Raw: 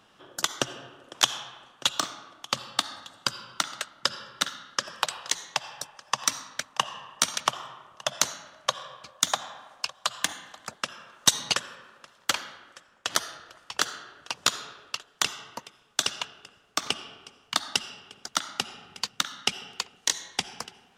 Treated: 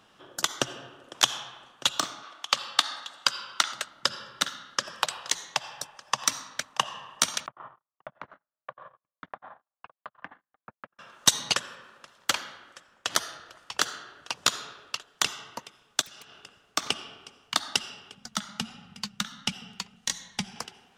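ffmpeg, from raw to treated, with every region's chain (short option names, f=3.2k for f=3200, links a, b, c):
-filter_complex "[0:a]asettb=1/sr,asplit=3[a][b][c];[a]atrim=end=2.234[d];[b]atrim=start=2.23:end=3.73,asetpts=PTS-STARTPTS,afade=t=in:d=0.004:c=qsin,afade=t=out:st=1.496:d=0.004:c=qsin,highpass=f=1.2k:p=1,highshelf=f=8.2k:g=-11,acontrast=81[e];[c]atrim=start=3.726[f];[d][e]acrossfade=d=0.004:c1=hsin:c2=qsin[g];[g][f]acrossfade=d=0.004:c1=qsin:c2=hsin,asettb=1/sr,asplit=3[h][i][j];[h]atrim=end=7.464[k];[i]atrim=start=7.46:end=10.99,asetpts=PTS-STARTPTS,afade=t=in:d=0.004:c=qsin,afade=t=out:st=3.526:d=0.004:c=qsin,lowpass=f=1.8k:w=0.5412,lowpass=f=1.8k:w=1.3066,acompressor=threshold=-37dB:ratio=3:attack=3.2:release=140:knee=1:detection=peak,agate=range=-47dB:threshold=-44dB:ratio=16:release=100:detection=peak[l];[j]atrim=start=10.986[m];[k][l]acrossfade=d=0.004:c1=hsin:c2=qsin[n];[n][m]acrossfade=d=0.004:c1=qsin:c2=hsin,asettb=1/sr,asplit=3[o][p][q];[o]atrim=end=16.014[r];[p]atrim=start=16.01:end=16.43,asetpts=PTS-STARTPTS,afade=t=in:d=0.004:c=qsin,afade=t=out:st=0.416:d=0.004:c=qsin,aeval=exprs='0.0473*(abs(mod(val(0)/0.0473+3,4)-2)-1)':c=same,acompressor=threshold=-45dB:ratio=6:attack=3.2:release=140:knee=1:detection=peak[s];[q]atrim=start=16.426[t];[r][s]acrossfade=d=0.004:c1=hsin:c2=qsin[u];[u][t]acrossfade=d=0.004:c1=qsin:c2=hsin,asettb=1/sr,asplit=3[v][w][x];[v]atrim=end=18.154[y];[w]atrim=start=18.15:end=20.56,asetpts=PTS-STARTPTS,afade=t=in:d=0.004:c=qsin,afade=t=out:st=2.406:d=0.004:c=qsin,lowshelf=f=260:t=q:w=3:g=8,flanger=delay=3.4:depth=1.8:regen=64:speed=1.5:shape=triangular[z];[x]atrim=start=20.556[aa];[y][z]acrossfade=d=0.004:c1=hsin:c2=qsin[ab];[ab][aa]acrossfade=d=0.004:c1=qsin:c2=hsin"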